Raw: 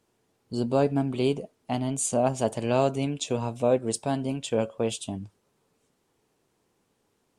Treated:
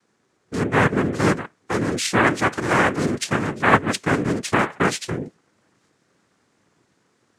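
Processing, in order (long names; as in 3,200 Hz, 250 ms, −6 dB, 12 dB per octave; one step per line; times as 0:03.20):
in parallel at +2 dB: speech leveller 2 s
on the sum: cochlear-implant simulation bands 3
level −1 dB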